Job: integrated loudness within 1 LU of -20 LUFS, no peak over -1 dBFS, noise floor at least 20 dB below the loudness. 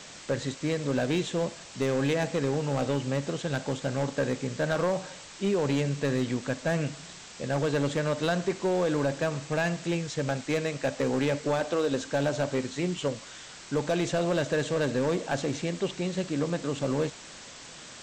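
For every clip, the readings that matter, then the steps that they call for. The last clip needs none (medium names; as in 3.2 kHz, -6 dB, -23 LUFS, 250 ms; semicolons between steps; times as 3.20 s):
clipped samples 1.5%; clipping level -20.0 dBFS; noise floor -46 dBFS; noise floor target -49 dBFS; loudness -29.0 LUFS; peak level -20.0 dBFS; loudness target -20.0 LUFS
-> clip repair -20 dBFS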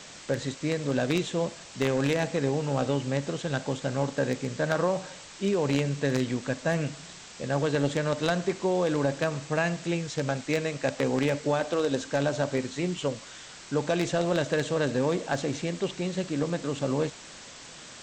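clipped samples 0.0%; noise floor -46 dBFS; noise floor target -49 dBFS
-> noise print and reduce 6 dB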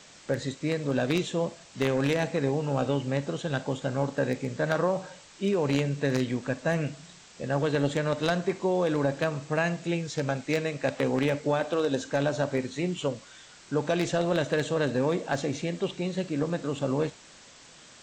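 noise floor -52 dBFS; loudness -28.5 LUFS; peak level -11.0 dBFS; loudness target -20.0 LUFS
-> trim +8.5 dB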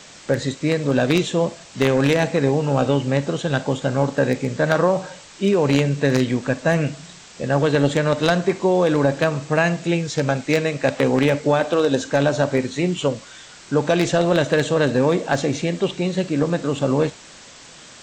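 loudness -20.0 LUFS; peak level -2.5 dBFS; noise floor -44 dBFS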